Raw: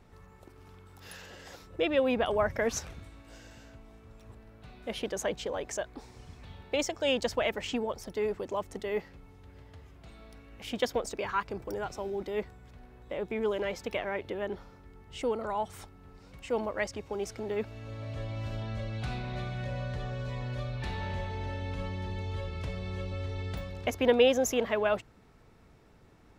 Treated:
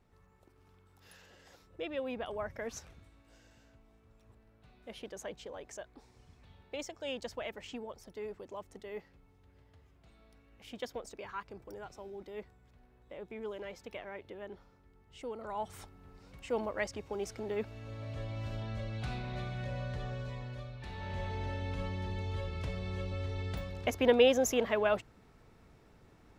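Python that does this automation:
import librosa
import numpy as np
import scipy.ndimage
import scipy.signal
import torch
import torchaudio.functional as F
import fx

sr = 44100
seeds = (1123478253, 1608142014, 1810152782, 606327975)

y = fx.gain(x, sr, db=fx.line((15.3, -11.0), (15.72, -3.0), (20.13, -3.0), (20.8, -10.5), (21.27, -1.5)))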